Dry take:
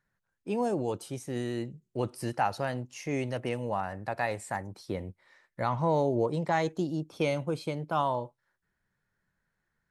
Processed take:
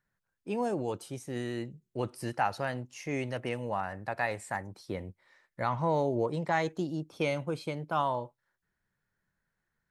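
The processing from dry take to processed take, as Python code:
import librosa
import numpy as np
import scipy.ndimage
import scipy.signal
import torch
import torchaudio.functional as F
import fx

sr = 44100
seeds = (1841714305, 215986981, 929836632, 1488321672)

y = fx.dynamic_eq(x, sr, hz=1800.0, q=0.9, threshold_db=-46.0, ratio=4.0, max_db=4)
y = y * 10.0 ** (-2.5 / 20.0)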